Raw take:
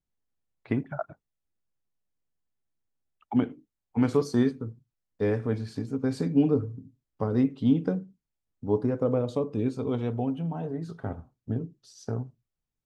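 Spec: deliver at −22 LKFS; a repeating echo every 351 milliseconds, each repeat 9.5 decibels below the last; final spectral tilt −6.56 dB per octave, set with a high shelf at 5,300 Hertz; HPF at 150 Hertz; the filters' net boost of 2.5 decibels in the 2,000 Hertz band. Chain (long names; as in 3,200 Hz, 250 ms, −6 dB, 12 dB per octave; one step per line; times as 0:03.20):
high-pass filter 150 Hz
parametric band 2,000 Hz +4 dB
high-shelf EQ 5,300 Hz −7.5 dB
repeating echo 351 ms, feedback 33%, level −9.5 dB
level +7.5 dB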